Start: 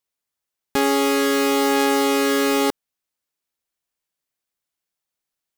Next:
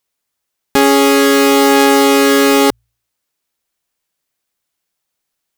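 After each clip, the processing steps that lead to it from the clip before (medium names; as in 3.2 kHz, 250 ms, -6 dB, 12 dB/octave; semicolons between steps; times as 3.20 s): de-hum 57.46 Hz, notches 2; trim +9 dB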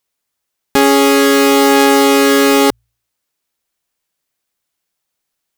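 no audible change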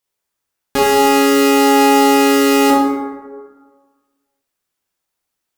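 plate-style reverb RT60 1.5 s, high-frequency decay 0.4×, DRR -4.5 dB; trim -6.5 dB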